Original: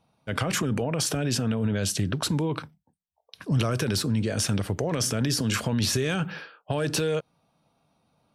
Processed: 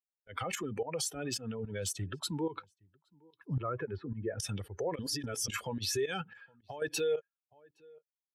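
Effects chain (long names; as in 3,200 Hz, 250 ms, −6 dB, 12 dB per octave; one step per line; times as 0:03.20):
spectral dynamics exaggerated over time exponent 2
0:03.54–0:04.40: low-pass filter 1,800 Hz 24 dB per octave
slap from a distant wall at 140 metres, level −28 dB
fake sidechain pumping 109 BPM, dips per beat 2, −16 dB, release 125 ms
low-shelf EQ 190 Hz −10.5 dB
comb filter 2.3 ms, depth 47%
brickwall limiter −24.5 dBFS, peak gain reduction 8 dB
0:01.15–0:01.99: hard clipping −27.5 dBFS, distortion −39 dB
0:04.99–0:05.48: reverse
0:06.21–0:06.82: downward compressor 3 to 1, threshold −44 dBFS, peak gain reduction 10 dB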